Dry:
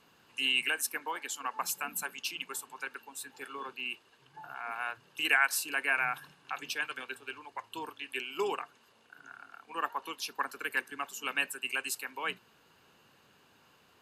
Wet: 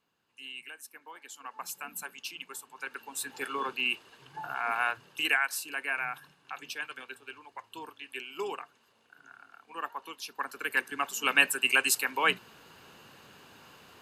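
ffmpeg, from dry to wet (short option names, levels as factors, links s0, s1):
-af "volume=10.6,afade=t=in:st=0.92:d=1.05:silence=0.281838,afade=t=in:st=2.73:d=0.6:silence=0.266073,afade=t=out:st=4.77:d=0.66:silence=0.281838,afade=t=in:st=10.33:d=1.21:silence=0.237137"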